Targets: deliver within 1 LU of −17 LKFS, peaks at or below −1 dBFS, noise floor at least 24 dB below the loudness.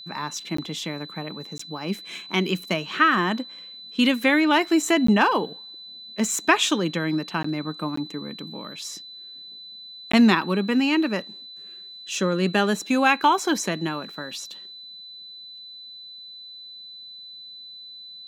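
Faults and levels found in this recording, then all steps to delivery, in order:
number of dropouts 6; longest dropout 14 ms; interfering tone 4,000 Hz; level of the tone −39 dBFS; integrated loudness −23.0 LKFS; sample peak −3.0 dBFS; target loudness −17.0 LKFS
→ repair the gap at 0:00.57/0:01.58/0:05.07/0:07.43/0:07.96/0:10.12, 14 ms
notch filter 4,000 Hz, Q 30
level +6 dB
brickwall limiter −1 dBFS

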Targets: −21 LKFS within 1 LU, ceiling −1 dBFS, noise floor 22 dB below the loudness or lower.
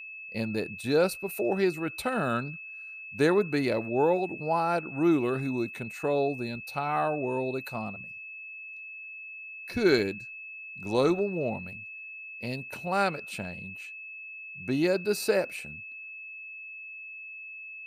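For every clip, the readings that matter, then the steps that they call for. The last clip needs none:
interfering tone 2,600 Hz; level of the tone −40 dBFS; integrated loudness −30.5 LKFS; sample peak −11.0 dBFS; target loudness −21.0 LKFS
→ notch filter 2,600 Hz, Q 30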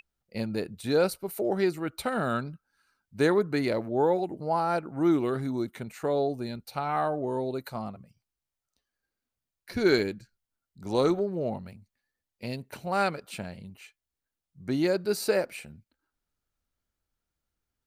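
interfering tone none found; integrated loudness −29.0 LKFS; sample peak −11.0 dBFS; target loudness −21.0 LKFS
→ level +8 dB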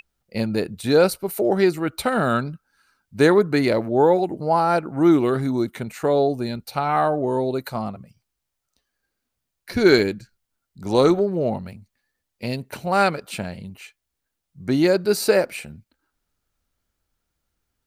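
integrated loudness −21.0 LKFS; sample peak −3.0 dBFS; background noise floor −80 dBFS

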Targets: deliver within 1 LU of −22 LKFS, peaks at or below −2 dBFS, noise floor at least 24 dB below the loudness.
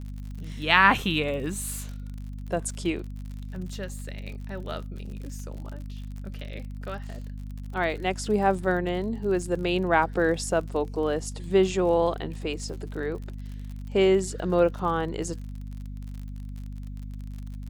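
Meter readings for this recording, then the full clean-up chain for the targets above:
crackle rate 47 per second; mains hum 50 Hz; hum harmonics up to 250 Hz; level of the hum −34 dBFS; integrated loudness −26.5 LKFS; sample peak −3.0 dBFS; target loudness −22.0 LKFS
→ click removal
hum removal 50 Hz, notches 5
level +4.5 dB
brickwall limiter −2 dBFS

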